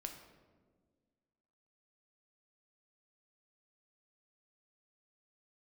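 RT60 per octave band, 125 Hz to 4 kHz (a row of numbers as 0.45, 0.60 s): 1.9, 2.1, 1.9, 1.3, 1.0, 0.80 s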